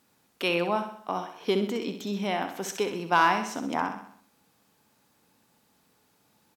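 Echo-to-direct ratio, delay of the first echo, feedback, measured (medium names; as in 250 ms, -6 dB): -7.0 dB, 64 ms, 50%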